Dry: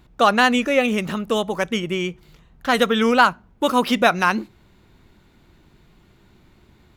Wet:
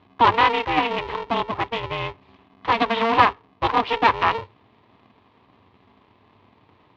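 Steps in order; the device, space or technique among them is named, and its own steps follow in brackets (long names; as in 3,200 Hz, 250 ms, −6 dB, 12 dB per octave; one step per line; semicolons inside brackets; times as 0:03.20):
ring modulator pedal into a guitar cabinet (ring modulator with a square carrier 230 Hz; loudspeaker in its box 89–3,600 Hz, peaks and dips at 99 Hz +7 dB, 160 Hz −9 dB, 320 Hz −4 dB, 560 Hz −6 dB, 1,000 Hz +9 dB, 1,500 Hz −7 dB)
level −2 dB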